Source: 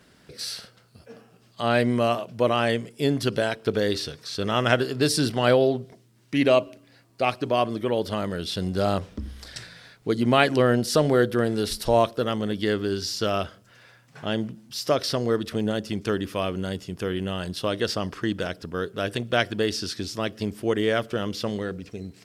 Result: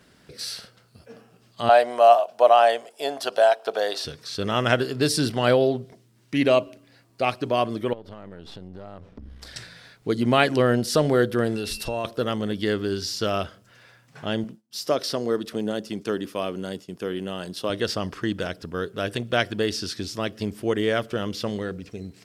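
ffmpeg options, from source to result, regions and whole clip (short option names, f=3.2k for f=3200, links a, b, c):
-filter_complex "[0:a]asettb=1/sr,asplit=3[a][b][c];[a]atrim=end=1.694[d];[b]atrim=start=1.69:end=4.05,asetpts=PTS-STARTPTS,afade=t=in:d=0.004:c=qsin,afade=t=out:st=2.356:d=0.004:c=qsin,highpass=f=700:t=q:w=5,equalizer=f=2.1k:t=o:w=0.31:g=-6[e];[c]atrim=start=4.046[f];[d][e]acrossfade=d=0.004:c1=hsin:c2=qsin[g];[g][f]acrossfade=d=0.004:c1=qsin:c2=hsin,asettb=1/sr,asplit=3[h][i][j];[h]atrim=end=7.934[k];[i]atrim=start=7.93:end=9.42,asetpts=PTS-STARTPTS,afade=t=in:d=0.004:c=qsin,afade=t=out:st=1.486:d=0.004:c=qsin,aeval=exprs='if(lt(val(0),0),0.447*val(0),val(0))':c=same,lowpass=f=1.5k:p=1,acompressor=threshold=-36dB:ratio=6:attack=3.2:release=140:knee=1:detection=peak[l];[j]atrim=start=9.416[m];[k][l]acrossfade=d=0.004:c1=hsin:c2=qsin[n];[n][m]acrossfade=d=0.004:c1=qsin:c2=hsin,asettb=1/sr,asplit=3[o][p][q];[o]atrim=end=11.564[r];[p]atrim=start=11.56:end=12.05,asetpts=PTS-STARTPTS,afade=t=in:d=0.004:c=qsin,afade=t=out:st=0.486:d=0.004:c=qsin,acompressor=threshold=-25dB:ratio=4:attack=3.2:release=140:knee=1:detection=peak,aeval=exprs='val(0)+0.0112*sin(2*PI*2700*n/s)':c=same[s];[q]atrim=start=12.046[t];[r][s]acrossfade=d=0.004:c1=hsin:c2=qsin[u];[u][t]acrossfade=d=0.004:c1=qsin:c2=hsin,asettb=1/sr,asplit=3[v][w][x];[v]atrim=end=14.444[y];[w]atrim=start=14.44:end=17.7,asetpts=PTS-STARTPTS,afade=t=in:d=0.004:c=qsin,afade=t=out:st=3.256:d=0.004:c=qsin,agate=range=-33dB:threshold=-38dB:ratio=3:release=100:detection=peak,highpass=190,equalizer=f=2.1k:w=0.77:g=-3.5[z];[x]atrim=start=17.696[aa];[y][z]acrossfade=d=0.004:c1=hsin:c2=qsin[ab];[ab][aa]acrossfade=d=0.004:c1=qsin:c2=hsin"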